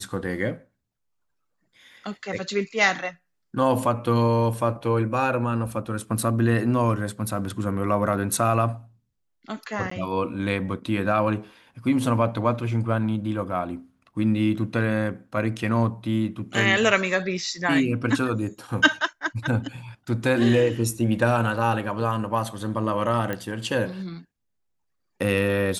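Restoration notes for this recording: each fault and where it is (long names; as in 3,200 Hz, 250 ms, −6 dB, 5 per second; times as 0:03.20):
0:09.90–0:09.91: drop-out 14 ms
0:23.33: click −15 dBFS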